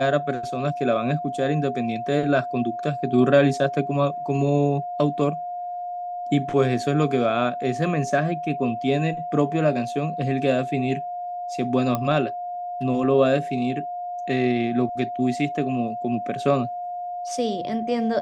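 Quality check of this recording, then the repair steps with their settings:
whistle 710 Hz −28 dBFS
0:11.95: click −11 dBFS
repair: click removal
notch filter 710 Hz, Q 30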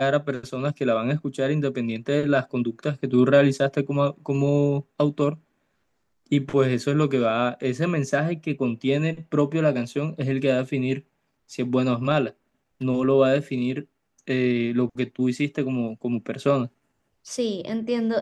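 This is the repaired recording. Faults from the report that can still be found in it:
none of them is left

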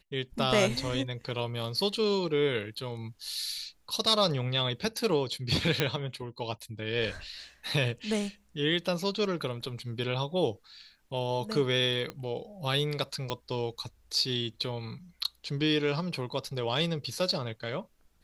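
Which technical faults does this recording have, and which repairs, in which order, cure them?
0:05.80: click −10 dBFS
0:12.10: click −22 dBFS
0:13.30: click −16 dBFS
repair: click removal

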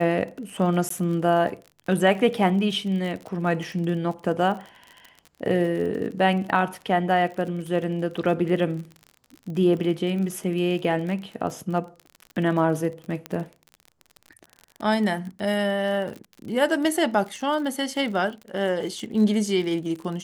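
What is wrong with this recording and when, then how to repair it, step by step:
surface crackle 39 per second −32 dBFS
0:00.89–0:00.90: drop-out 14 ms
0:13.26: click −16 dBFS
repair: click removal
repair the gap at 0:00.89, 14 ms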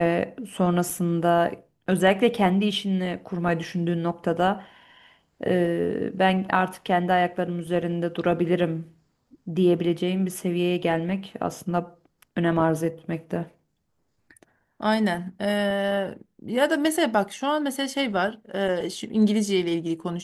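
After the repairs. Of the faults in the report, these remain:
0:13.26: click

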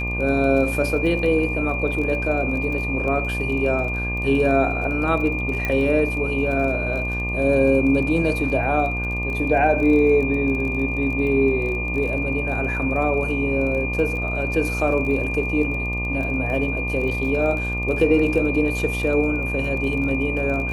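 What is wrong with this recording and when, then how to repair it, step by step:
mains buzz 60 Hz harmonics 20 −27 dBFS
surface crackle 24 per second −29 dBFS
whistle 2,400 Hz −26 dBFS
0:05.65: click −11 dBFS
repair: click removal
hum removal 60 Hz, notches 20
notch filter 2,400 Hz, Q 30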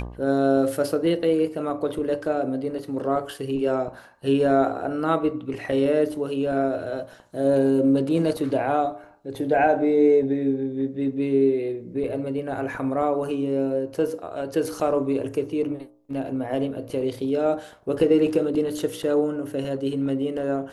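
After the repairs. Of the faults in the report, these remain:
none of them is left

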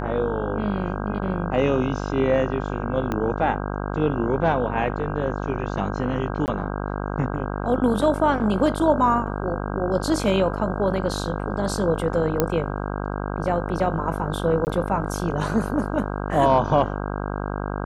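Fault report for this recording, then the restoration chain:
mains buzz 50 Hz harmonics 32 −28 dBFS
0:03.12: click −13 dBFS
0:06.46–0:06.48: drop-out 19 ms
0:12.40: click −5 dBFS
0:14.65–0:14.67: drop-out 19 ms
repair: click removal
hum removal 50 Hz, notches 32
repair the gap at 0:06.46, 19 ms
repair the gap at 0:14.65, 19 ms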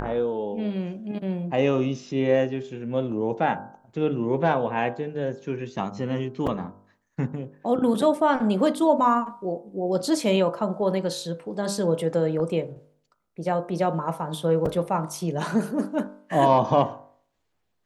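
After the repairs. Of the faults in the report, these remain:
0:03.12: click

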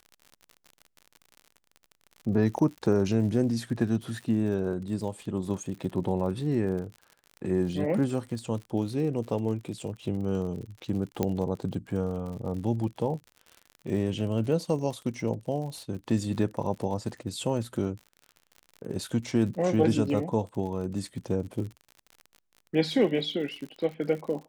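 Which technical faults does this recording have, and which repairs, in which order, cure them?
surface crackle 58 per second −37 dBFS
0:11.23: click −13 dBFS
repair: click removal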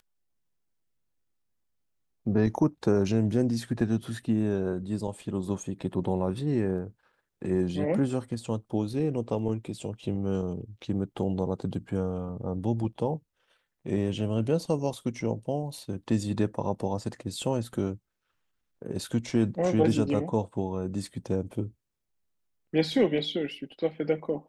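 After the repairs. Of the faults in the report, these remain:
0:11.23: click

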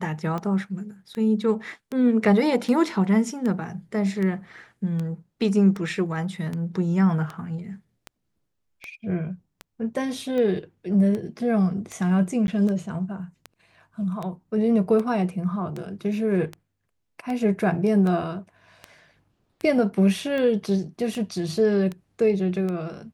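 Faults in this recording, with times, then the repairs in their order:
scratch tick 78 rpm −19 dBFS
0:12.47–0:12.48: drop-out 11 ms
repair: click removal
repair the gap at 0:12.47, 11 ms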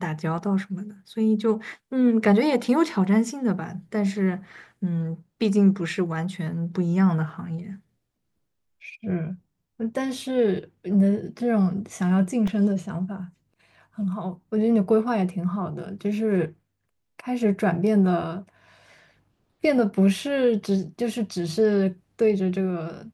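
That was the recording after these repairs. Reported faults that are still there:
none of them is left

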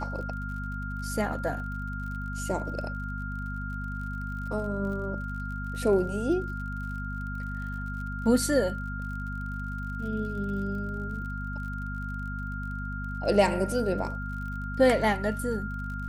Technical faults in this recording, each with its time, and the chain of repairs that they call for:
surface crackle 46 per second −39 dBFS
mains hum 50 Hz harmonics 5 −35 dBFS
whistle 1,400 Hz −37 dBFS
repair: click removal
notch filter 1,400 Hz, Q 30
hum removal 50 Hz, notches 5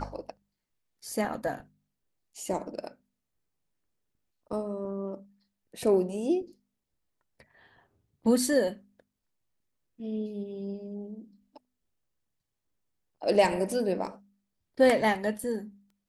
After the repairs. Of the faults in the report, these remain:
none of them is left

